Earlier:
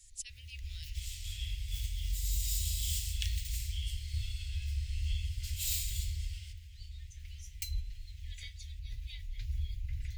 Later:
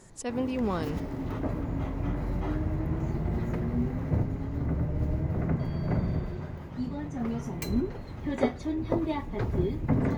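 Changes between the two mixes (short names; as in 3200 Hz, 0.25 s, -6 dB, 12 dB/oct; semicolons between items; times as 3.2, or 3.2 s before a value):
second sound: muted; reverb: off; master: remove inverse Chebyshev band-stop 170–1200 Hz, stop band 50 dB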